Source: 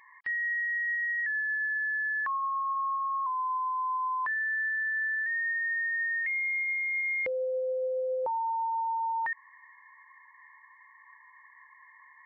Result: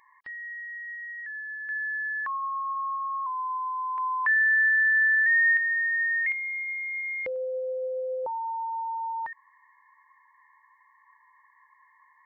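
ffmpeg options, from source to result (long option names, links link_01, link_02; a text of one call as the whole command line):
ffmpeg -i in.wav -af "asetnsamples=nb_out_samples=441:pad=0,asendcmd='1.69 equalizer g -0.5;3.98 equalizer g 11.5;5.57 equalizer g 5;6.32 equalizer g -2;7.36 equalizer g -9',equalizer=frequency=2100:width_type=o:width=1:gain=-8.5" out.wav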